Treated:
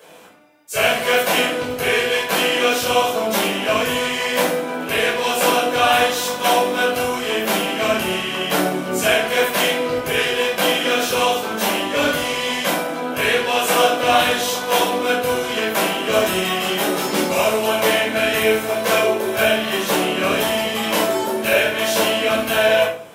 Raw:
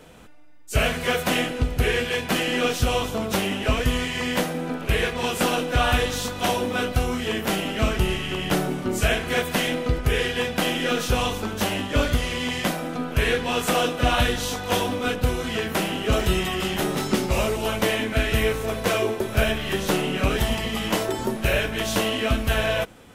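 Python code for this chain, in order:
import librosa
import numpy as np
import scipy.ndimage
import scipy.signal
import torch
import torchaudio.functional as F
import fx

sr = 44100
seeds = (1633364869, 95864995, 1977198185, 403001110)

y = scipy.signal.sosfilt(scipy.signal.butter(2, 370.0, 'highpass', fs=sr, output='sos'), x)
y = fx.high_shelf(y, sr, hz=12000.0, db=9.0)
y = fx.room_shoebox(y, sr, seeds[0], volume_m3=650.0, walls='furnished', distance_m=5.4)
y = F.gain(torch.from_numpy(y), -1.0).numpy()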